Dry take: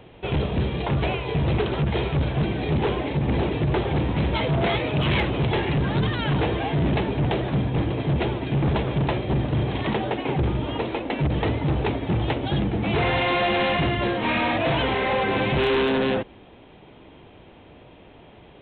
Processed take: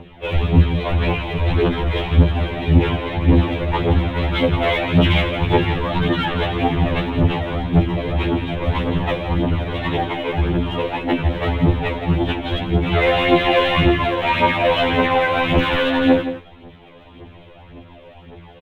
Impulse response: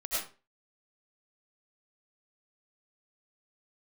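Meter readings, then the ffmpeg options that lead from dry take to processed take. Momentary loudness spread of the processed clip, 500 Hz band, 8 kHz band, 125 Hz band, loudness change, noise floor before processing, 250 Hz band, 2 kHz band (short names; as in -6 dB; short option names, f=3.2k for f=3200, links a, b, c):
6 LU, +5.0 dB, n/a, +4.5 dB, +5.0 dB, -48 dBFS, +5.0 dB, +5.0 dB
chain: -af "aphaser=in_gain=1:out_gain=1:delay=2.1:decay=0.68:speed=1.8:type=triangular,aecho=1:1:169:0.282,afftfilt=real='re*2*eq(mod(b,4),0)':imag='im*2*eq(mod(b,4),0)':win_size=2048:overlap=0.75,volume=4.5dB"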